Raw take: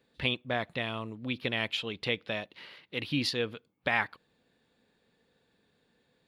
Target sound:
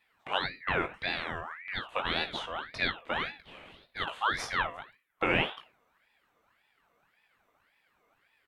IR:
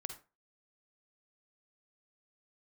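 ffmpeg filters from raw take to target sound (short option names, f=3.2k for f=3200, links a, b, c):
-filter_complex "[0:a]equalizer=f=4.4k:w=1.1:g=-13.5,asetrate=32667,aresample=44100,lowshelf=f=200:g=-7.5,asplit=2[a][b];[b]adelay=19,volume=-6.5dB[c];[a][c]amix=inputs=2:normalize=0,asplit=2[d][e];[1:a]atrim=start_sample=2205[f];[e][f]afir=irnorm=-1:irlink=0,volume=2.5dB[g];[d][g]amix=inputs=2:normalize=0,aeval=exprs='val(0)*sin(2*PI*1500*n/s+1500*0.45/1.8*sin(2*PI*1.8*n/s))':c=same"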